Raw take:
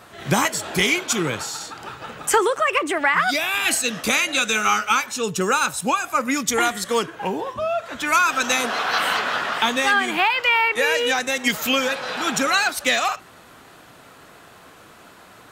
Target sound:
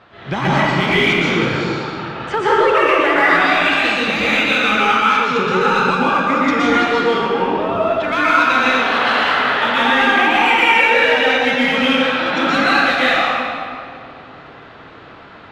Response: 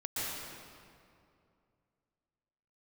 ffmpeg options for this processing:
-filter_complex "[0:a]lowpass=f=3900:w=0.5412,lowpass=f=3900:w=1.3066,asplit=2[s0][s1];[s1]asoftclip=type=hard:threshold=0.0841,volume=0.355[s2];[s0][s2]amix=inputs=2:normalize=0[s3];[1:a]atrim=start_sample=2205[s4];[s3][s4]afir=irnorm=-1:irlink=0"

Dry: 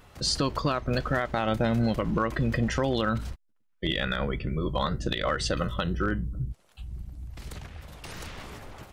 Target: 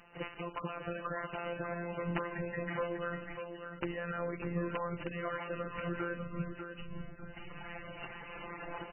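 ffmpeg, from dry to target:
-filter_complex "[0:a]aemphasis=mode=production:type=bsi,agate=range=0.0316:threshold=0.00355:ratio=16:detection=peak,asplit=3[s0][s1][s2];[s0]afade=t=out:st=3.3:d=0.02[s3];[s1]equalizer=f=2700:t=o:w=1.3:g=-10.5,afade=t=in:st=3.3:d=0.02,afade=t=out:st=4.96:d=0.02[s4];[s2]afade=t=in:st=4.96:d=0.02[s5];[s3][s4][s5]amix=inputs=3:normalize=0,asplit=2[s6][s7];[s7]acompressor=mode=upward:threshold=0.0316:ratio=2.5,volume=1.41[s8];[s6][s8]amix=inputs=2:normalize=0,alimiter=limit=0.251:level=0:latency=1:release=56,acompressor=threshold=0.0282:ratio=8,aeval=exprs='sgn(val(0))*max(abs(val(0))-0.00178,0)':c=same,flanger=delay=5.5:depth=4:regen=67:speed=0.45:shape=triangular,afftfilt=real='hypot(re,im)*cos(PI*b)':imag='0':win_size=1024:overlap=0.75,aeval=exprs='(mod(25.1*val(0)+1,2)-1)/25.1':c=same,aecho=1:1:596|1192|1788|2384:0.447|0.143|0.0457|0.0146,volume=2" -ar 12000 -c:a libmp3lame -b:a 8k

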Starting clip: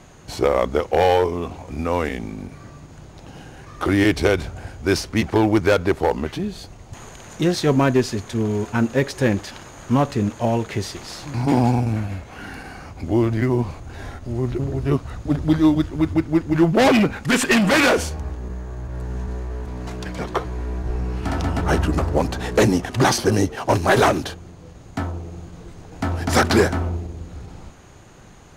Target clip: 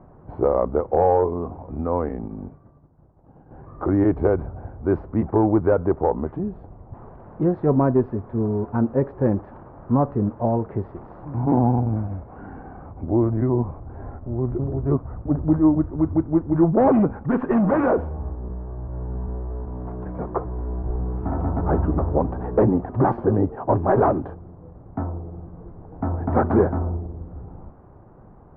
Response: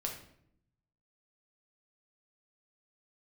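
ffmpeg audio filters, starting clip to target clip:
-filter_complex "[0:a]asettb=1/sr,asplit=3[s0][s1][s2];[s0]atrim=end=2.284[s3];[s1]atrim=start=2.28:end=3.51,asetpts=PTS-STARTPTS,afade=t=in:d=0.004:c=qsin,afade=t=out:st=1.226:d=0.004:c=qsin,agate=range=0.0224:threshold=0.0282:ratio=3:detection=peak[s4];[s2]atrim=start=3.506[s5];[s3][s4]acrossfade=d=0.004:c1=hsin:c2=qsin[s6];[s6][s5]acrossfade=d=0.004:c1=qsin:c2=hsin,lowpass=f=1100:w=0.5412,lowpass=f=1100:w=1.3066,volume=0.891"

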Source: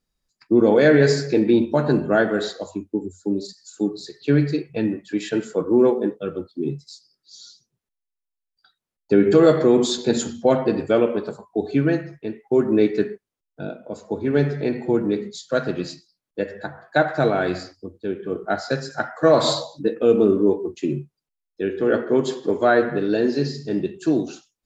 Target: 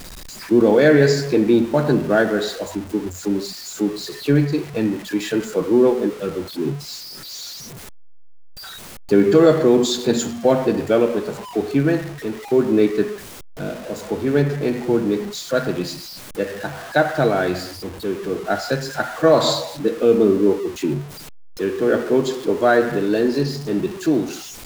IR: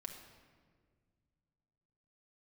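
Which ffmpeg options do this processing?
-af "aeval=exprs='val(0)+0.5*0.0282*sgn(val(0))':c=same,volume=1.12"

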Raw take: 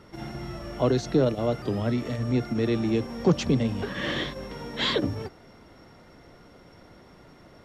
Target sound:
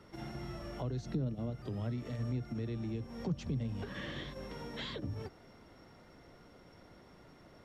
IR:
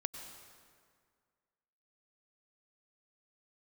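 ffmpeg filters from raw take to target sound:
-filter_complex "[0:a]asettb=1/sr,asplit=3[s0][s1][s2];[s0]atrim=end=1.054[s3];[s1]atrim=start=1.05:end=1.5,asetpts=PTS-STARTPTS,afade=t=in:d=0.004:c=qsin,afade=t=out:st=0.446:d=0.004:c=qsin,equalizer=f=230:w=1.5:g=8[s4];[s2]atrim=start=1.496[s5];[s3][s4]acrossfade=d=0.004:c1=hsin:c2=qsin[s6];[s6][s5]acrossfade=d=0.004:c1=qsin:c2=hsin,acrossover=split=160[s7][s8];[s8]acompressor=threshold=0.02:ratio=10[s9];[s7][s9]amix=inputs=2:normalize=0,volume=0.473"

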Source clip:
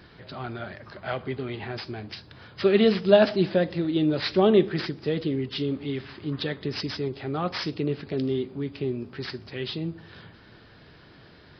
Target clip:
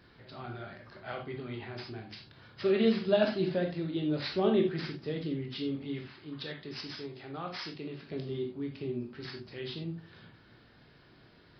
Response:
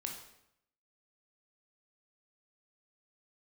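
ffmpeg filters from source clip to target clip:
-filter_complex "[0:a]asettb=1/sr,asplit=3[s0][s1][s2];[s0]atrim=end=6.074[s3];[s1]atrim=start=6.07:end=8.11,asetpts=PTS-STARTPTS,afade=t=in:d=0.004:c=qsin,afade=t=out:st=2.036:d=0.004:c=qsin,lowshelf=f=430:g=-7.5[s4];[s2]atrim=start=8.106[s5];[s3][s4]acrossfade=d=0.004:c1=hsin:c2=qsin[s6];[s6][s5]acrossfade=d=0.004:c1=qsin:c2=hsin[s7];[1:a]atrim=start_sample=2205,atrim=end_sample=4410[s8];[s7][s8]afir=irnorm=-1:irlink=0,volume=0.473"

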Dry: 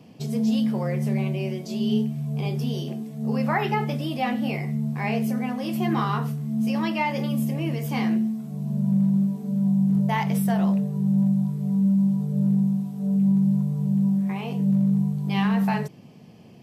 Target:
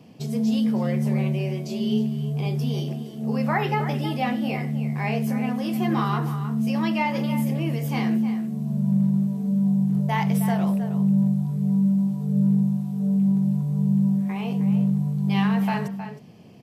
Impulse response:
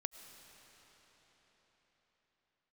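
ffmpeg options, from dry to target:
-filter_complex "[0:a]asplit=2[s0][s1];[s1]adelay=314.9,volume=0.316,highshelf=f=4000:g=-7.08[s2];[s0][s2]amix=inputs=2:normalize=0"

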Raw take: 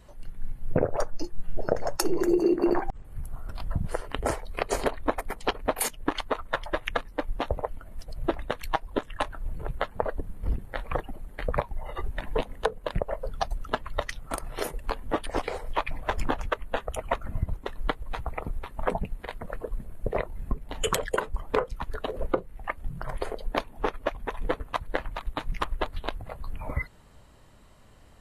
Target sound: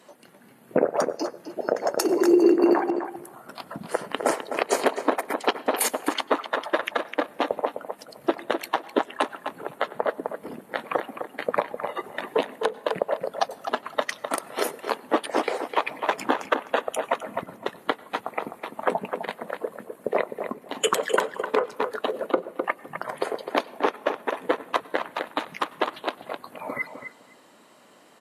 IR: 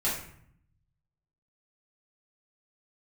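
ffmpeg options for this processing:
-filter_complex "[0:a]highpass=f=230:w=0.5412,highpass=f=230:w=1.3066,asplit=2[s0][s1];[s1]adelay=256,lowpass=f=2900:p=1,volume=0.398,asplit=2[s2][s3];[s3]adelay=256,lowpass=f=2900:p=1,volume=0.15[s4];[s0][s2][s4]amix=inputs=3:normalize=0,asplit=2[s5][s6];[1:a]atrim=start_sample=2205,adelay=91[s7];[s6][s7]afir=irnorm=-1:irlink=0,volume=0.0251[s8];[s5][s8]amix=inputs=2:normalize=0,alimiter=level_in=3.98:limit=0.891:release=50:level=0:latency=1,volume=0.473" -ar 48000 -c:a libopus -b:a 256k

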